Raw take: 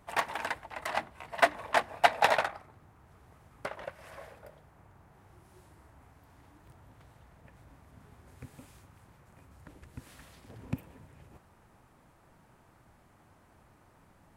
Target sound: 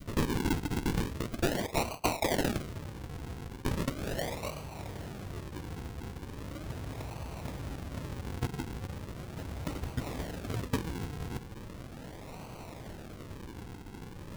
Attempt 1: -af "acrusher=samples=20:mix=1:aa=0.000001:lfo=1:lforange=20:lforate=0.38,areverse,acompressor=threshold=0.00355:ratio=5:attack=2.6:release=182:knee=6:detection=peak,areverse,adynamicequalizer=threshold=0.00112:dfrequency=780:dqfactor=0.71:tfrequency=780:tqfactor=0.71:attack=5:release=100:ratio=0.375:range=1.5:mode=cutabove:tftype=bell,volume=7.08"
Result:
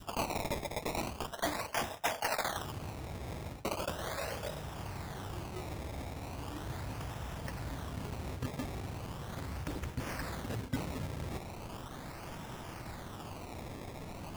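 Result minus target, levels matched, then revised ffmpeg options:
decimation with a swept rate: distortion -29 dB; compression: peak gain reduction +4 dB
-af "acrusher=samples=50:mix=1:aa=0.000001:lfo=1:lforange=50:lforate=0.38,areverse,acompressor=threshold=0.00708:ratio=5:attack=2.6:release=182:knee=6:detection=peak,areverse,adynamicequalizer=threshold=0.00112:dfrequency=780:dqfactor=0.71:tfrequency=780:tqfactor=0.71:attack=5:release=100:ratio=0.375:range=1.5:mode=cutabove:tftype=bell,volume=7.08"

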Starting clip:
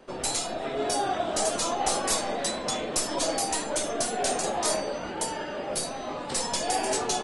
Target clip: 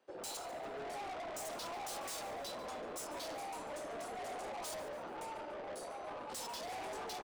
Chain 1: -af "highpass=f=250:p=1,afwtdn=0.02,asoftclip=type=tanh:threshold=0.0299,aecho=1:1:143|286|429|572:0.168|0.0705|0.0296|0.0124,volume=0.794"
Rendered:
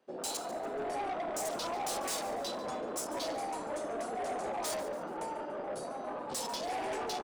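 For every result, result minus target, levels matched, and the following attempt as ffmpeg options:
saturation: distortion -5 dB; 250 Hz band +2.5 dB
-af "highpass=f=250:p=1,afwtdn=0.02,asoftclip=type=tanh:threshold=0.01,aecho=1:1:143|286|429|572:0.168|0.0705|0.0296|0.0124,volume=0.794"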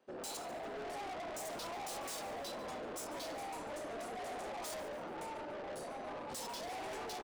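250 Hz band +2.5 dB
-af "highpass=f=570:p=1,afwtdn=0.02,asoftclip=type=tanh:threshold=0.01,aecho=1:1:143|286|429|572:0.168|0.0705|0.0296|0.0124,volume=0.794"

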